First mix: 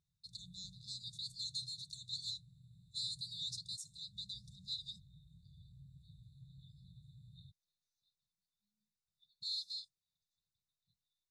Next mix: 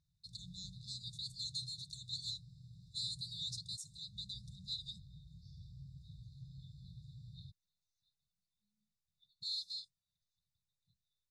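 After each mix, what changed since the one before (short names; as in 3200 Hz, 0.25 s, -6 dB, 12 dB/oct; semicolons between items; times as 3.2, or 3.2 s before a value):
background: remove Butterworth band-stop 5400 Hz, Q 1.3; master: add low shelf 200 Hz +7.5 dB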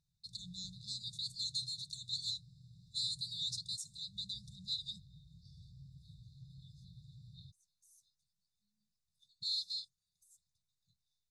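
first voice +3.5 dB; second voice: remove steep low-pass 3900 Hz; background: add low shelf 110 Hz -6 dB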